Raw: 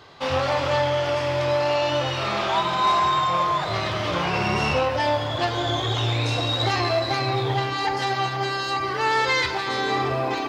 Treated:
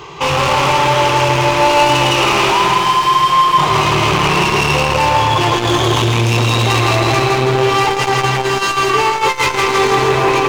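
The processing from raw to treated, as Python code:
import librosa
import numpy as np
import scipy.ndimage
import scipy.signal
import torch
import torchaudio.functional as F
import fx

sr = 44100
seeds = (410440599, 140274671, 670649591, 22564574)

p1 = fx.ripple_eq(x, sr, per_octave=0.73, db=12)
p2 = fx.over_compress(p1, sr, threshold_db=-22.0, ratio=-0.5)
p3 = p1 + F.gain(torch.from_numpy(p2), 1.5).numpy()
p4 = np.clip(10.0 ** (17.0 / 20.0) * p3, -1.0, 1.0) / 10.0 ** (17.0 / 20.0)
p5 = p4 + fx.echo_feedback(p4, sr, ms=164, feedback_pct=55, wet_db=-4, dry=0)
p6 = fx.transformer_sat(p5, sr, knee_hz=250.0)
y = F.gain(torch.from_numpy(p6), 5.5).numpy()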